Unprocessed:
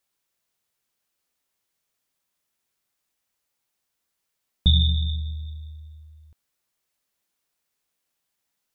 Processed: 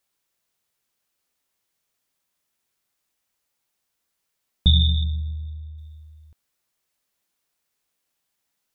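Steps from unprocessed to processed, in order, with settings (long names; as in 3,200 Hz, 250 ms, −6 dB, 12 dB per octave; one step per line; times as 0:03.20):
0:05.04–0:05.78: low-pass filter 1,100 Hz 6 dB per octave
level +1.5 dB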